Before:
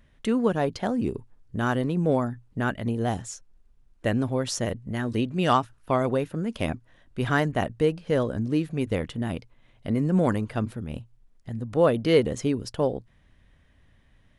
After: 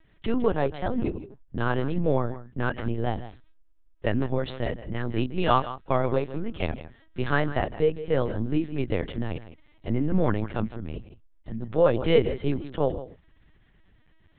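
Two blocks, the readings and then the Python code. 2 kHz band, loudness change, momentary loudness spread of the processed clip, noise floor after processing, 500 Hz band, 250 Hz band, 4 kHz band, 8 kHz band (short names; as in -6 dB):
-1.0 dB, -1.0 dB, 14 LU, -59 dBFS, 0.0 dB, -2.5 dB, -2.5 dB, under -40 dB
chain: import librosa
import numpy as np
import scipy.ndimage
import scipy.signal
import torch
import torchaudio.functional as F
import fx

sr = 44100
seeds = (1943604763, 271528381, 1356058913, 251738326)

p1 = fx.tracing_dist(x, sr, depth_ms=0.023)
p2 = p1 + fx.echo_single(p1, sr, ms=159, db=-14.0, dry=0)
y = fx.lpc_vocoder(p2, sr, seeds[0], excitation='pitch_kept', order=10)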